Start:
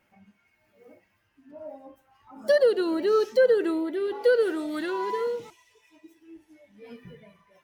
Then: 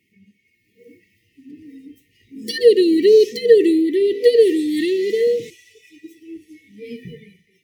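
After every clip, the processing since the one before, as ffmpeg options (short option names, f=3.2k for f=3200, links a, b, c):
-af "highpass=77,afftfilt=real='re*(1-between(b*sr/4096,490,1800))':imag='im*(1-between(b*sr/4096,490,1800))':win_size=4096:overlap=0.75,dynaudnorm=f=710:g=3:m=8.5dB,volume=3.5dB"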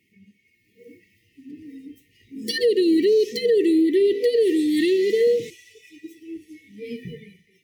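-af "alimiter=limit=-12dB:level=0:latency=1:release=137"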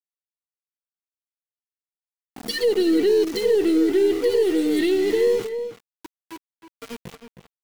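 -filter_complex "[0:a]aeval=exprs='val(0)*gte(abs(val(0)),0.0299)':c=same,asplit=2[a][b];[b]adelay=314.9,volume=-9dB,highshelf=f=4k:g=-7.08[c];[a][c]amix=inputs=2:normalize=0,aeval=exprs='0.335*(cos(1*acos(clip(val(0)/0.335,-1,1)))-cos(1*PI/2))+0.0106*(cos(6*acos(clip(val(0)/0.335,-1,1)))-cos(6*PI/2))':c=same,volume=-1dB"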